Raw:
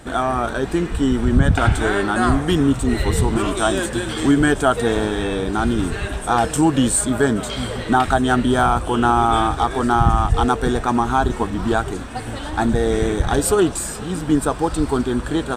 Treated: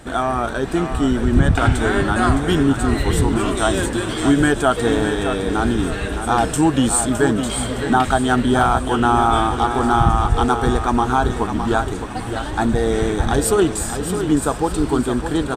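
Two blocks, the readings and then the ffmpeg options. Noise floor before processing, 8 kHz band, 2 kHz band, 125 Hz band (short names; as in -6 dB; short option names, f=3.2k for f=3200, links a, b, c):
-29 dBFS, +0.5 dB, +0.5 dB, +0.5 dB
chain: -af "aecho=1:1:613|1226|1839|2452:0.376|0.128|0.0434|0.0148"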